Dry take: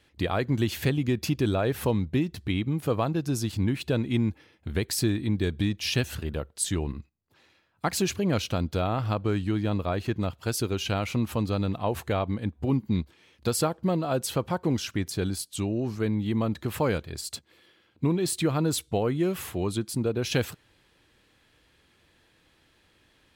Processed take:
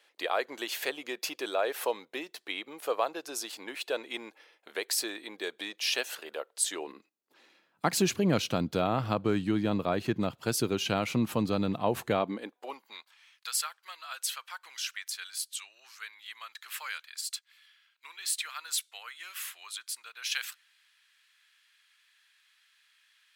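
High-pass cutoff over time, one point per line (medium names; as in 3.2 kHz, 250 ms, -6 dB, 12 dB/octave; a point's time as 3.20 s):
high-pass 24 dB/octave
6.66 s 480 Hz
8.02 s 130 Hz
12.13 s 130 Hz
12.58 s 520 Hz
13.51 s 1.4 kHz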